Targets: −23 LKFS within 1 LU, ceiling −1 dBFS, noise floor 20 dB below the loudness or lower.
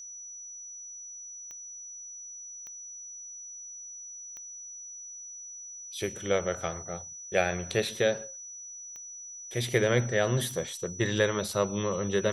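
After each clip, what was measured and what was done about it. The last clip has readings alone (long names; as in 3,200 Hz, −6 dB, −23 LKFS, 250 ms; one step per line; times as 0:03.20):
number of clicks 5; interfering tone 5,900 Hz; level of the tone −41 dBFS; integrated loudness −32.5 LKFS; sample peak −10.0 dBFS; target loudness −23.0 LKFS
→ click removal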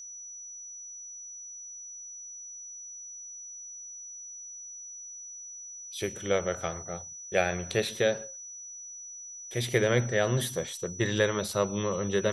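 number of clicks 0; interfering tone 5,900 Hz; level of the tone −41 dBFS
→ notch filter 5,900 Hz, Q 30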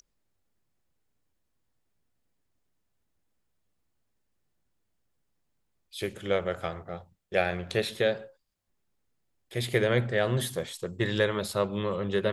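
interfering tone none found; integrated loudness −29.5 LKFS; sample peak −10.0 dBFS; target loudness −23.0 LKFS
→ level +6.5 dB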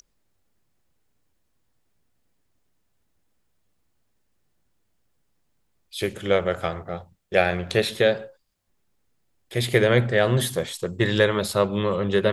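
integrated loudness −23.0 LKFS; sample peak −3.5 dBFS; background noise floor −70 dBFS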